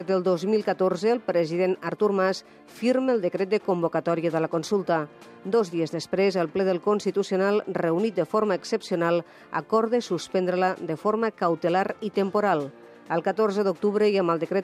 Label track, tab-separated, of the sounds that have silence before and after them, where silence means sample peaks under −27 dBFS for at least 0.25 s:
2.830000	5.050000	sound
5.460000	9.210000	sound
9.530000	12.660000	sound